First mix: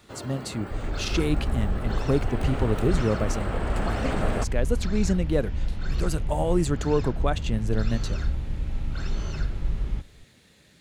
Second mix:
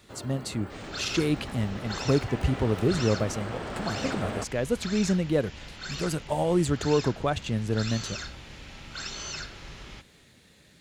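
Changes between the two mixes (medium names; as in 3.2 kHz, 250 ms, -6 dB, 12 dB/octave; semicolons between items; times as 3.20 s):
first sound -4.0 dB; second sound: add tilt EQ +4.5 dB/octave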